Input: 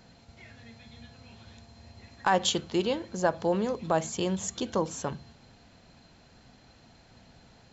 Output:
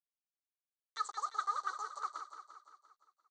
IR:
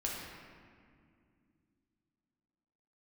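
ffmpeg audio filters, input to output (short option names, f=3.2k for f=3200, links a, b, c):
-filter_complex "[0:a]aresample=8000,acrusher=bits=5:mix=0:aa=0.000001,aresample=44100,asplit=3[a][b][c];[a]bandpass=f=530:t=q:w=8,volume=0dB[d];[b]bandpass=f=1.84k:t=q:w=8,volume=-6dB[e];[c]bandpass=f=2.48k:t=q:w=8,volume=-9dB[f];[d][e][f]amix=inputs=3:normalize=0,aecho=1:1:405|810|1215|1620|2025|2430|2835:0.376|0.218|0.126|0.0733|0.0425|0.0247|0.0143,asetrate=103194,aresample=44100,volume=-4dB"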